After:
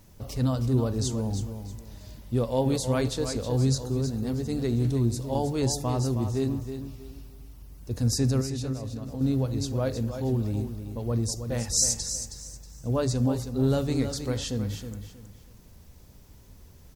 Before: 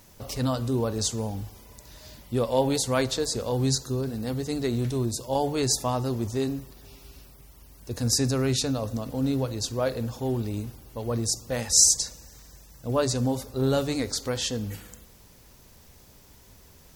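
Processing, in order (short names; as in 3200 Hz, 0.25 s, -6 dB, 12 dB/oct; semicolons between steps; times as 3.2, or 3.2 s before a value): low shelf 320 Hz +10.5 dB; 8.41–9.21 compressor, threshold -26 dBFS, peak gain reduction 11.5 dB; feedback echo 0.318 s, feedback 27%, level -9 dB; gain -6 dB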